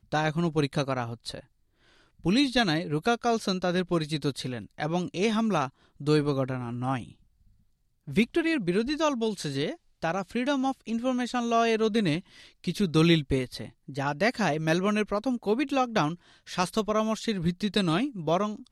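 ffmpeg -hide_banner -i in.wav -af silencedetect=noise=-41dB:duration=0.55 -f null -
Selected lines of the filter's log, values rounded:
silence_start: 1.40
silence_end: 2.24 | silence_duration: 0.84
silence_start: 7.11
silence_end: 8.08 | silence_duration: 0.97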